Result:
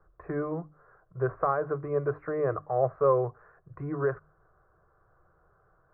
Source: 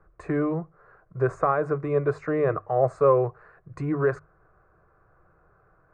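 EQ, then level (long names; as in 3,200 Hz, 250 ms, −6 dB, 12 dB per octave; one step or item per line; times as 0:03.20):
low-pass filter 1,700 Hz 24 dB per octave
parametric band 240 Hz −5 dB 0.85 octaves
mains-hum notches 50/100/150/200/250/300 Hz
−3.5 dB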